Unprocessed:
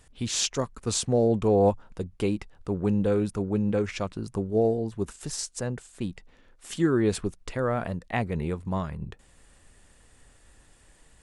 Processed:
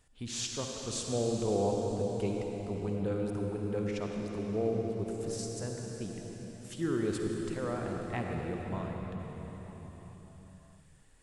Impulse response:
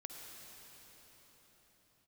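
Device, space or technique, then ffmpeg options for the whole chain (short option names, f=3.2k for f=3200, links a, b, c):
cathedral: -filter_complex "[1:a]atrim=start_sample=2205[a];[0:a][a]afir=irnorm=-1:irlink=0,volume=-4dB"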